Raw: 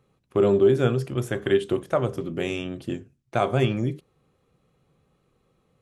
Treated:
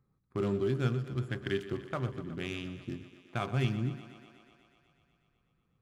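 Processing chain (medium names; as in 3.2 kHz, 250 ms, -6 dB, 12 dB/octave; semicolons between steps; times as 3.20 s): local Wiener filter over 15 samples; peaking EQ 550 Hz -13 dB 1.5 oct; on a send: thinning echo 123 ms, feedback 77%, high-pass 170 Hz, level -14 dB; on the sum: trim -4.5 dB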